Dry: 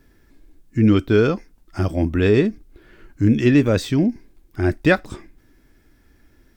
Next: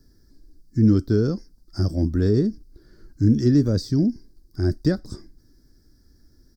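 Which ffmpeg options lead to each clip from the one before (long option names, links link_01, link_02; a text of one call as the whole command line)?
ffmpeg -i in.wav -filter_complex "[0:a]firequalizer=gain_entry='entry(140,0);entry(820,-13);entry(1600,-10);entry(2600,-29);entry(4800,9);entry(6900,-3)':delay=0.05:min_phase=1,acrossover=split=470[link_01][link_02];[link_02]acompressor=threshold=-31dB:ratio=10[link_03];[link_01][link_03]amix=inputs=2:normalize=0" out.wav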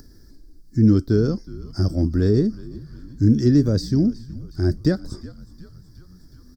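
ffmpeg -i in.wav -filter_complex "[0:a]asplit=6[link_01][link_02][link_03][link_04][link_05][link_06];[link_02]adelay=368,afreqshift=-68,volume=-18.5dB[link_07];[link_03]adelay=736,afreqshift=-136,volume=-23.1dB[link_08];[link_04]adelay=1104,afreqshift=-204,volume=-27.7dB[link_09];[link_05]adelay=1472,afreqshift=-272,volume=-32.2dB[link_10];[link_06]adelay=1840,afreqshift=-340,volume=-36.8dB[link_11];[link_01][link_07][link_08][link_09][link_10][link_11]amix=inputs=6:normalize=0,acompressor=mode=upward:threshold=-40dB:ratio=2.5,volume=1.5dB" out.wav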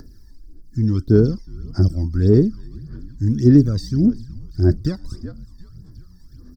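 ffmpeg -i in.wav -af "aphaser=in_gain=1:out_gain=1:delay=1.1:decay=0.7:speed=1.7:type=sinusoidal,volume=-5dB" out.wav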